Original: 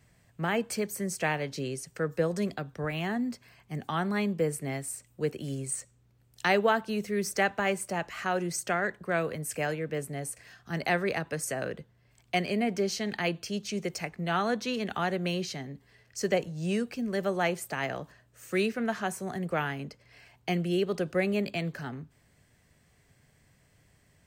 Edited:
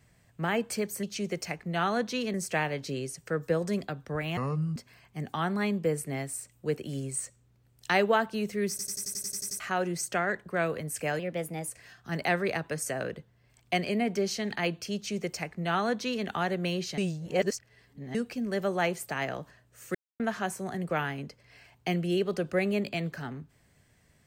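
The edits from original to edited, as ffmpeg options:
-filter_complex "[0:a]asplit=21[s0][s1][s2][s3][s4][s5][s6][s7][s8][s9][s10][s11][s12][s13][s14][s15][s16][s17][s18][s19][s20];[s0]atrim=end=1.032[s21];[s1]atrim=start=13.558:end=14.872[s22];[s2]atrim=start=1.028:end=3.064[s23];[s3]atrim=start=3.06:end=3.31,asetpts=PTS-STARTPTS,asetrate=28224,aresample=44100[s24];[s4]atrim=start=3.306:end=7.342[s25];[s5]atrim=start=7.248:end=7.342[s26];[s6]atrim=start=7.248:end=7.342[s27];[s7]atrim=start=7.248:end=7.342[s28];[s8]atrim=start=7.248:end=7.342[s29];[s9]atrim=start=7.248:end=7.342[s30];[s10]atrim=start=7.248:end=7.342[s31];[s11]atrim=start=7.248:end=7.342[s32];[s12]atrim=start=7.248:end=7.342[s33];[s13]atrim=start=7.248:end=7.342[s34];[s14]atrim=start=8.148:end=9.744[s35];[s15]atrim=start=9.74:end=10.29,asetpts=PTS-STARTPTS,asetrate=49833,aresample=44100[s36];[s16]atrim=start=10.286:end=15.592[s37];[s17]atrim=start=15.588:end=16.762,asetpts=PTS-STARTPTS,areverse[s38];[s18]atrim=start=16.758:end=18.56,asetpts=PTS-STARTPTS,afade=t=out:st=1.798:d=0.004:c=hsin[s39];[s19]atrim=start=18.56:end=18.81,asetpts=PTS-STARTPTS,volume=0[s40];[s20]atrim=start=18.81,asetpts=PTS-STARTPTS,afade=t=in:d=0.004:c=hsin[s41];[s21][s22]acrossfade=d=0.004:c1=hsin:c2=hsin[s42];[s42][s23]acrossfade=d=0.004:c1=hsin:c2=hsin[s43];[s43][s24]acrossfade=d=0.004:c1=hsin:c2=hsin[s44];[s44][s25]acrossfade=d=0.004:c1=hsin:c2=hsin[s45];[s45][s26]acrossfade=d=0.004:c1=hsin:c2=hsin[s46];[s46][s27]acrossfade=d=0.004:c1=hsin:c2=hsin[s47];[s47][s28]acrossfade=d=0.004:c1=hsin:c2=hsin[s48];[s48][s29]acrossfade=d=0.004:c1=hsin:c2=hsin[s49];[s49][s30]acrossfade=d=0.004:c1=hsin:c2=hsin[s50];[s50][s31]acrossfade=d=0.004:c1=hsin:c2=hsin[s51];[s51][s32]acrossfade=d=0.004:c1=hsin:c2=hsin[s52];[s52][s33]acrossfade=d=0.004:c1=hsin:c2=hsin[s53];[s53][s34]acrossfade=d=0.004:c1=hsin:c2=hsin[s54];[s54][s35]acrossfade=d=0.004:c1=hsin:c2=hsin[s55];[s55][s36]acrossfade=d=0.004:c1=hsin:c2=hsin[s56];[s56][s37]acrossfade=d=0.004:c1=hsin:c2=hsin[s57];[s57][s38]acrossfade=d=0.004:c1=hsin:c2=hsin[s58];[s39][s40][s41]concat=n=3:v=0:a=1[s59];[s58][s59]acrossfade=d=0.004:c1=hsin:c2=hsin"

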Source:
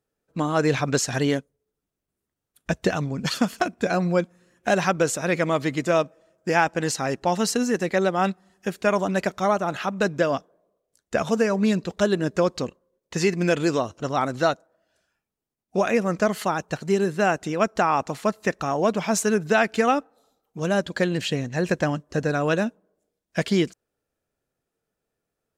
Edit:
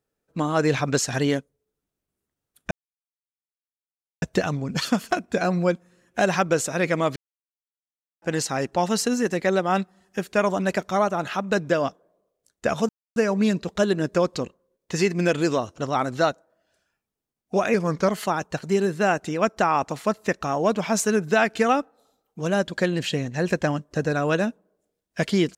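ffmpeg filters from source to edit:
-filter_complex "[0:a]asplit=7[s0][s1][s2][s3][s4][s5][s6];[s0]atrim=end=2.71,asetpts=PTS-STARTPTS,afade=t=out:st=2.706:d=0.004:c=hsin,apad=pad_dur=1.51[s7];[s1]atrim=start=2.71:end=5.65,asetpts=PTS-STARTPTS,afade=t=in:d=0.004:c=hsin,afade=t=out:st=2.936:d=0.004:c=hsin[s8];[s2]atrim=start=5.65:end=6.71,asetpts=PTS-STARTPTS,volume=0[s9];[s3]atrim=start=6.71:end=11.38,asetpts=PTS-STARTPTS,afade=t=in:d=0.004:c=hsin,afade=t=out:st=4.666:d=0.004:c=hsin,apad=pad_dur=0.27[s10];[s4]atrim=start=11.38:end=15.964,asetpts=PTS-STARTPTS,afade=t=in:d=0.004:c=hsin[s11];[s5]atrim=start=15.96:end=16.27,asetpts=PTS-STARTPTS,asetrate=39690,aresample=44100[s12];[s6]atrim=start=16.266[s13];[s7][s8][s9][s10][s11]concat=n=5:v=0:a=1[s14];[s14][s12]acrossfade=d=0.004:c1=hsin:c2=hsin[s15];[s15][s13]acrossfade=d=0.004:c1=hsin:c2=hsin"

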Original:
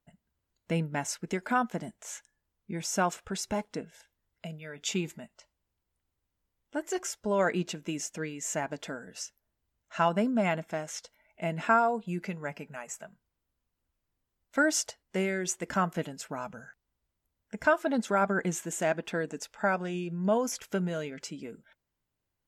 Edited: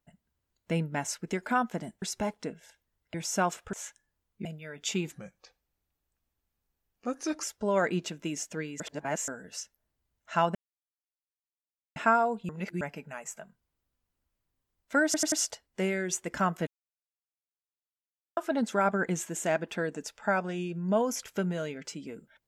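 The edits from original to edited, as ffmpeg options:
-filter_complex "[0:a]asplit=18[s0][s1][s2][s3][s4][s5][s6][s7][s8][s9][s10][s11][s12][s13][s14][s15][s16][s17];[s0]atrim=end=2.022[s18];[s1]atrim=start=3.328:end=4.452[s19];[s2]atrim=start=2.738:end=3.332[s20];[s3]atrim=start=2.018:end=2.742[s21];[s4]atrim=start=4.448:end=5.124[s22];[s5]atrim=start=5.12:end=7.06,asetpts=PTS-STARTPTS,asetrate=37044,aresample=44100[s23];[s6]atrim=start=7.056:end=8.432[s24];[s7]atrim=start=8.428:end=8.912,asetpts=PTS-STARTPTS,areverse[s25];[s8]atrim=start=8.908:end=10.18,asetpts=PTS-STARTPTS,afade=t=out:st=1.268:d=0.004:c=hsin[s26];[s9]atrim=start=10.18:end=11.59,asetpts=PTS-STARTPTS,volume=0[s27];[s10]atrim=start=11.59:end=12.122,asetpts=PTS-STARTPTS,afade=t=in:d=0.004:c=hsin[s28];[s11]atrim=start=12.118:end=12.442,asetpts=PTS-STARTPTS,areverse[s29];[s12]atrim=start=12.438:end=14.772[s30];[s13]atrim=start=14.678:end=14.772[s31];[s14]atrim=start=14.678:end=14.772[s32];[s15]atrim=start=14.678:end=16.03,asetpts=PTS-STARTPTS,afade=t=out:st=1.348:d=0.004:c=hsin[s33];[s16]atrim=start=16.03:end=17.73,asetpts=PTS-STARTPTS,volume=0[s34];[s17]atrim=start=17.73,asetpts=PTS-STARTPTS,afade=t=in:d=0.004:c=hsin[s35];[s18][s19]acrossfade=d=0.004:c1=hsin:c2=hsin[s36];[s36][s20]acrossfade=d=0.004:c1=hsin:c2=hsin[s37];[s37][s21]acrossfade=d=0.004:c1=hsin:c2=hsin[s38];[s38][s22]acrossfade=d=0.004:c1=hsin:c2=hsin[s39];[s39][s23]acrossfade=d=0.004:c1=hsin:c2=hsin[s40];[s40][s24]acrossfade=d=0.004:c1=hsin:c2=hsin[s41];[s41][s25]acrossfade=d=0.004:c1=hsin:c2=hsin[s42];[s26][s27][s28]concat=n=3:v=0:a=1[s43];[s42][s43]acrossfade=d=0.004:c1=hsin:c2=hsin[s44];[s44][s29]acrossfade=d=0.004:c1=hsin:c2=hsin[s45];[s45][s30]acrossfade=d=0.004:c1=hsin:c2=hsin[s46];[s46][s31]acrossfade=d=0.004:c1=hsin:c2=hsin[s47];[s47][s32]acrossfade=d=0.004:c1=hsin:c2=hsin[s48];[s33][s34][s35]concat=n=3:v=0:a=1[s49];[s48][s49]acrossfade=d=0.004:c1=hsin:c2=hsin"

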